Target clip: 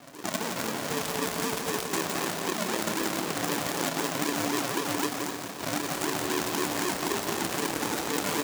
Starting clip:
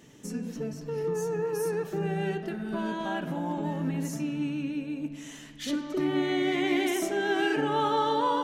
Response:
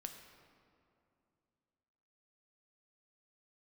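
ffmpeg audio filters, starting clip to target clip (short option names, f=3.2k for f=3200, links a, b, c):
-filter_complex "[0:a]aresample=16000,acrusher=samples=31:mix=1:aa=0.000001:lfo=1:lforange=18.6:lforate=3.9,aresample=44100,alimiter=limit=-22dB:level=0:latency=1:release=32,acompressor=threshold=-36dB:ratio=8,asplit=2[a][b];[1:a]atrim=start_sample=2205,lowpass=3.5k[c];[b][c]afir=irnorm=-1:irlink=0,volume=2dB[d];[a][d]amix=inputs=2:normalize=0,acrusher=bits=2:mode=log:mix=0:aa=0.000001,highpass=120,bass=f=250:g=-15,treble=f=4k:g=7,asplit=2[e][f];[f]adelay=27,volume=-11dB[g];[e][g]amix=inputs=2:normalize=0,aecho=1:1:172:0.473,volume=7.5dB"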